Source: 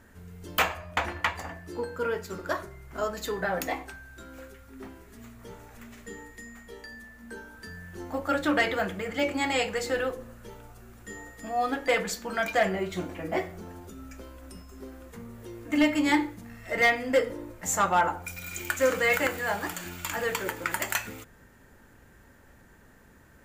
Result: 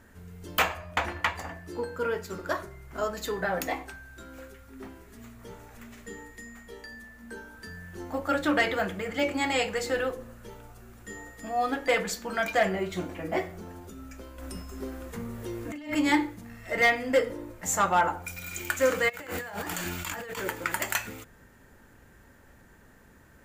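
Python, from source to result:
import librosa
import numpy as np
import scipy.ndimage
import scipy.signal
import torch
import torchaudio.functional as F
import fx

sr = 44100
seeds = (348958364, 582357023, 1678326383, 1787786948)

y = fx.over_compress(x, sr, threshold_db=-34.0, ratio=-1.0, at=(14.38, 15.95))
y = fx.over_compress(y, sr, threshold_db=-37.0, ratio=-1.0, at=(19.08, 20.41), fade=0.02)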